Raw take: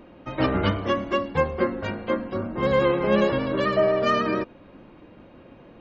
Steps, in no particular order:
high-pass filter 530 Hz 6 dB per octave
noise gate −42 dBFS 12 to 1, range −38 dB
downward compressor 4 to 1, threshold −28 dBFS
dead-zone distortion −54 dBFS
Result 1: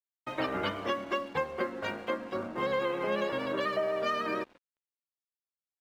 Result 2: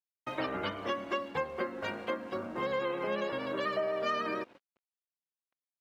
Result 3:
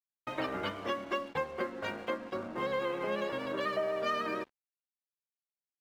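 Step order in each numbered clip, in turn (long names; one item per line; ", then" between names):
noise gate, then high-pass filter, then downward compressor, then dead-zone distortion
noise gate, then dead-zone distortion, then downward compressor, then high-pass filter
downward compressor, then high-pass filter, then noise gate, then dead-zone distortion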